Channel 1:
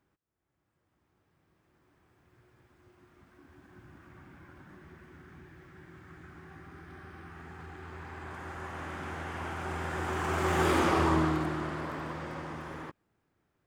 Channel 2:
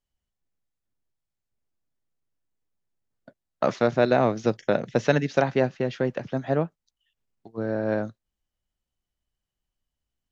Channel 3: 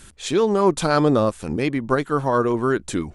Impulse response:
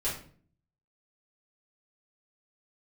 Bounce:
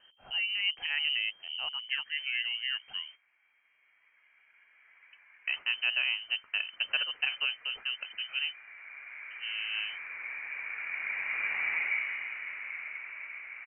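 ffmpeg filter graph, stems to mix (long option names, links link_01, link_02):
-filter_complex "[0:a]asoftclip=type=tanh:threshold=-22.5dB,highpass=frequency=900:width_type=q:width=5.1,adelay=850,volume=2dB[link_01];[1:a]adelay=1850,volume=-10dB[link_02];[2:a]volume=-14dB,asplit=2[link_03][link_04];[link_04]apad=whole_len=639930[link_05];[link_01][link_05]sidechaingate=range=-10dB:threshold=-51dB:ratio=16:detection=peak[link_06];[link_06][link_02][link_03]amix=inputs=3:normalize=0,lowpass=frequency=2700:width_type=q:width=0.5098,lowpass=frequency=2700:width_type=q:width=0.6013,lowpass=frequency=2700:width_type=q:width=0.9,lowpass=frequency=2700:width_type=q:width=2.563,afreqshift=-3200"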